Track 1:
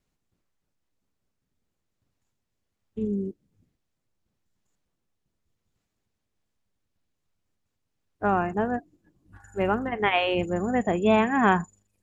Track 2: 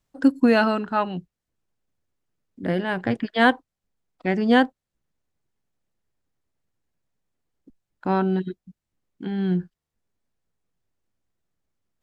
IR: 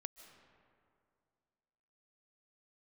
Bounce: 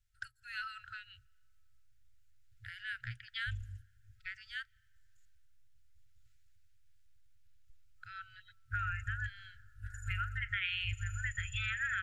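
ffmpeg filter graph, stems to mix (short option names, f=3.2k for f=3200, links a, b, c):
-filter_complex "[0:a]alimiter=limit=-15dB:level=0:latency=1:release=221,adelay=500,volume=0.5dB,asplit=2[a][b];[b]volume=-9dB[c];[1:a]acompressor=threshold=-25dB:ratio=4,volume=-7dB,asplit=2[d][e];[e]volume=-17.5dB[f];[2:a]atrim=start_sample=2205[g];[c][f]amix=inputs=2:normalize=0[h];[h][g]afir=irnorm=-1:irlink=0[i];[a][d][i]amix=inputs=3:normalize=0,afftfilt=real='re*(1-between(b*sr/4096,120,1300))':imag='im*(1-between(b*sr/4096,120,1300))':win_size=4096:overlap=0.75,lowshelf=f=88:g=9.5,acompressor=threshold=-34dB:ratio=3"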